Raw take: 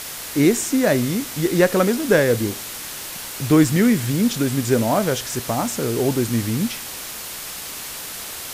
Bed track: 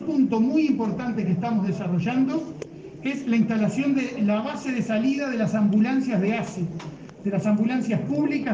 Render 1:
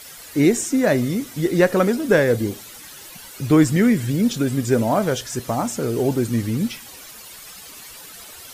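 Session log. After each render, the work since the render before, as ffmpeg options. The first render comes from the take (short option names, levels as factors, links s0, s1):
-af "afftdn=nr=12:nf=-33"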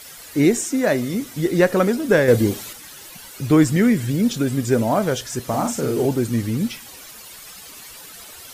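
-filter_complex "[0:a]asettb=1/sr,asplit=3[s0][s1][s2];[s0]atrim=end=0.594[s3];[s1]atrim=start=0.59:end=1.14,asetpts=PTS-STARTPTS,afade=t=in:d=0.004:c=qsin,afade=t=out:st=0.546:d=0.004:c=qsin,lowshelf=f=150:g=-9[s4];[s2]atrim=start=1.136[s5];[s3][s4]acrossfade=d=0.004:c1=hsin:c2=qsin[s6];[s6][s5]acrossfade=d=0.004:c1=qsin:c2=hsin,asettb=1/sr,asplit=3[s7][s8][s9];[s7]atrim=end=2.284[s10];[s8]atrim=start=2.28:end=2.73,asetpts=PTS-STARTPTS,afade=t=in:d=0.004:c=qsin,afade=t=out:st=0.446:d=0.004:c=qsin,acontrast=30[s11];[s9]atrim=start=2.726[s12];[s10][s11]acrossfade=d=0.004:c1=hsin:c2=qsin[s13];[s13][s12]acrossfade=d=0.004:c1=qsin:c2=hsin,asettb=1/sr,asplit=3[s14][s15][s16];[s14]atrim=end=5.464[s17];[s15]atrim=start=5.46:end=6.06,asetpts=PTS-STARTPTS,afade=t=in:d=0.004:c=qsin,afade=t=out:st=0.596:d=0.004:c=qsin,asplit=2[s18][s19];[s19]adelay=46,volume=0.596[s20];[s18][s20]amix=inputs=2:normalize=0,atrim=end_sample=26460[s21];[s16]atrim=start=6.056[s22];[s17][s21]acrossfade=d=0.004:c1=hsin:c2=qsin[s23];[s23][s22]acrossfade=d=0.004:c1=qsin:c2=hsin"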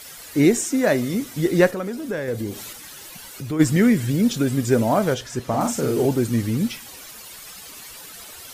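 -filter_complex "[0:a]asplit=3[s0][s1][s2];[s0]afade=t=out:st=1.7:d=0.02[s3];[s1]acompressor=threshold=0.0251:ratio=2:attack=3.2:release=140:knee=1:detection=peak,afade=t=in:st=1.7:d=0.02,afade=t=out:st=3.59:d=0.02[s4];[s2]afade=t=in:st=3.59:d=0.02[s5];[s3][s4][s5]amix=inputs=3:normalize=0,asettb=1/sr,asplit=3[s6][s7][s8];[s6]atrim=end=5.144[s9];[s7]atrim=start=5.14:end=5.61,asetpts=PTS-STARTPTS,afade=t=in:d=0.004:c=qsin,afade=t=out:st=0.466:d=0.004:c=qsin,lowpass=f=3700:p=1[s10];[s8]atrim=start=5.606[s11];[s9][s10]acrossfade=d=0.004:c1=hsin:c2=qsin[s12];[s12][s11]acrossfade=d=0.004:c1=qsin:c2=hsin"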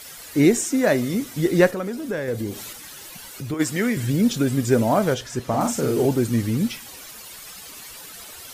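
-filter_complex "[0:a]asettb=1/sr,asplit=3[s0][s1][s2];[s0]atrim=end=3.544[s3];[s1]atrim=start=3.54:end=3.97,asetpts=PTS-STARTPTS,afade=t=in:d=0.004:c=qsin,afade=t=out:st=0.426:d=0.004:c=qsin,highpass=f=500:p=1[s4];[s2]atrim=start=3.966[s5];[s3][s4]acrossfade=d=0.004:c1=hsin:c2=qsin[s6];[s6][s5]acrossfade=d=0.004:c1=qsin:c2=hsin"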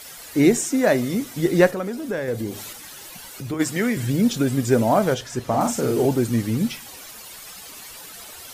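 -af "equalizer=f=760:w=2:g=2.5,bandreject=f=50:t=h:w=6,bandreject=f=100:t=h:w=6,bandreject=f=150:t=h:w=6"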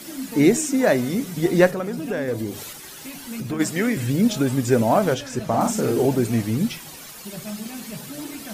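-filter_complex "[1:a]volume=0.251[s0];[0:a][s0]amix=inputs=2:normalize=0"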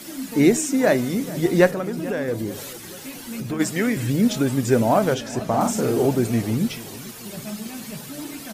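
-filter_complex "[0:a]asplit=2[s0][s1];[s1]adelay=437,lowpass=f=2000:p=1,volume=0.126,asplit=2[s2][s3];[s3]adelay=437,lowpass=f=2000:p=1,volume=0.52,asplit=2[s4][s5];[s5]adelay=437,lowpass=f=2000:p=1,volume=0.52,asplit=2[s6][s7];[s7]adelay=437,lowpass=f=2000:p=1,volume=0.52[s8];[s0][s2][s4][s6][s8]amix=inputs=5:normalize=0"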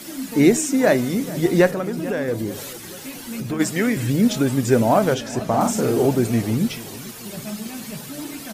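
-af "volume=1.19,alimiter=limit=0.708:level=0:latency=1"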